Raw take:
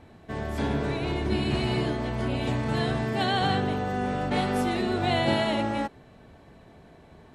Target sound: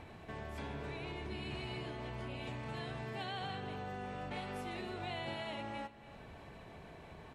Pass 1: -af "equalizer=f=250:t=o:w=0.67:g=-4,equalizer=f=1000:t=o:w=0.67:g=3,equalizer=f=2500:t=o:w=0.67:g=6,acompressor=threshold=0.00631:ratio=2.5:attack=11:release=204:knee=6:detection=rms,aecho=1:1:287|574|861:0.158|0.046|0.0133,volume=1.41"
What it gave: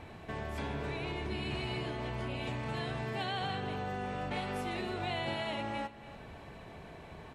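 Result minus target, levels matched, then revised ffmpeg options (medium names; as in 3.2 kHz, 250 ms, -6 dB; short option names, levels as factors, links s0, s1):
compression: peak gain reduction -5.5 dB
-af "equalizer=f=250:t=o:w=0.67:g=-4,equalizer=f=1000:t=o:w=0.67:g=3,equalizer=f=2500:t=o:w=0.67:g=6,acompressor=threshold=0.00211:ratio=2.5:attack=11:release=204:knee=6:detection=rms,aecho=1:1:287|574|861:0.158|0.046|0.0133,volume=1.41"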